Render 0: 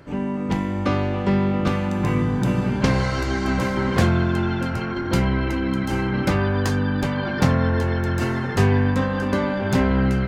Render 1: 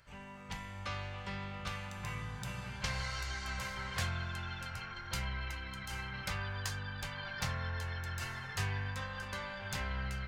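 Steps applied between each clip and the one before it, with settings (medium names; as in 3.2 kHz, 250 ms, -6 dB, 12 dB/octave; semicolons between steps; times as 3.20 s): amplifier tone stack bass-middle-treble 10-0-10; trim -6.5 dB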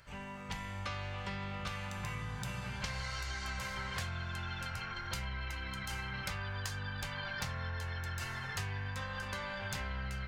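compression 4:1, threshold -41 dBFS, peak gain reduction 9 dB; trim +4.5 dB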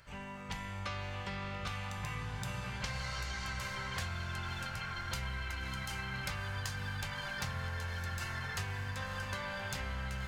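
echo that smears into a reverb 589 ms, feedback 63%, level -11 dB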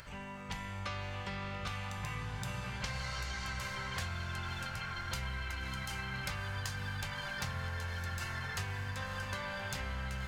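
upward compressor, threshold -45 dBFS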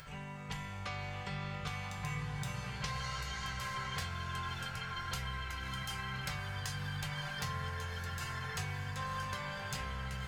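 feedback comb 150 Hz, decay 0.17 s, harmonics odd, mix 80%; trim +9 dB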